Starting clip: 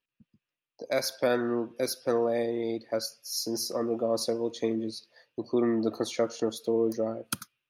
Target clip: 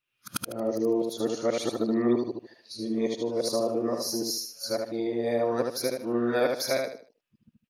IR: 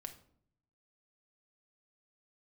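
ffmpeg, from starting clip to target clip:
-af "areverse,aecho=1:1:76|152|228|304:0.631|0.189|0.0568|0.017"

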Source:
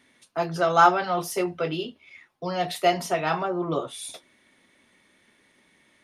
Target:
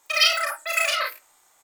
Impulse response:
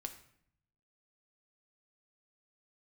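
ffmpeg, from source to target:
-filter_complex "[0:a]aecho=1:1:122.4|195.3:0.794|0.501,asplit=2[link_01][link_02];[1:a]atrim=start_sample=2205,asetrate=29988,aresample=44100[link_03];[link_02][link_03]afir=irnorm=-1:irlink=0,volume=0dB[link_04];[link_01][link_04]amix=inputs=2:normalize=0,asetrate=162729,aresample=44100,volume=-6dB"

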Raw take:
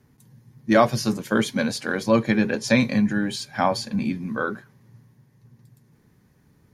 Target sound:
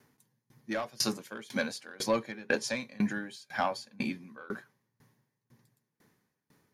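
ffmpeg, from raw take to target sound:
ffmpeg -i in.wav -filter_complex "[0:a]highpass=frequency=510:poles=1,acrossover=split=5700[link_01][link_02];[link_01]asoftclip=type=tanh:threshold=-14.5dB[link_03];[link_03][link_02]amix=inputs=2:normalize=0,aeval=exprs='val(0)*pow(10,-27*if(lt(mod(2*n/s,1),2*abs(2)/1000),1-mod(2*n/s,1)/(2*abs(2)/1000),(mod(2*n/s,1)-2*abs(2)/1000)/(1-2*abs(2)/1000))/20)':channel_layout=same,volume=3dB" out.wav

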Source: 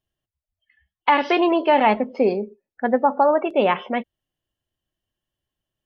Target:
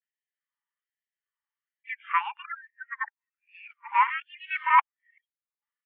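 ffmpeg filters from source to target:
ffmpeg -i in.wav -af "areverse,highpass=frequency=180:width_type=q:width=0.5412,highpass=frequency=180:width_type=q:width=1.307,lowpass=frequency=2300:width_type=q:width=0.5176,lowpass=frequency=2300:width_type=q:width=0.7071,lowpass=frequency=2300:width_type=q:width=1.932,afreqshift=110,afftfilt=real='re*gte(b*sr/1024,810*pow(1700/810,0.5+0.5*sin(2*PI*1.2*pts/sr)))':imag='im*gte(b*sr/1024,810*pow(1700/810,0.5+0.5*sin(2*PI*1.2*pts/sr)))':win_size=1024:overlap=0.75,volume=-1.5dB" out.wav

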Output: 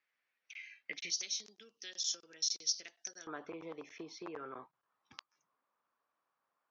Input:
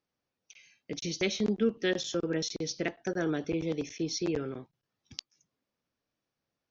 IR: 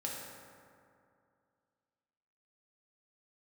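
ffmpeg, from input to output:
-af "acompressor=threshold=-38dB:ratio=4,asetnsamples=nb_out_samples=441:pad=0,asendcmd='1.1 bandpass f 5600;3.27 bandpass f 1100',bandpass=frequency=2000:width_type=q:width=3.1:csg=0,volume=12dB"

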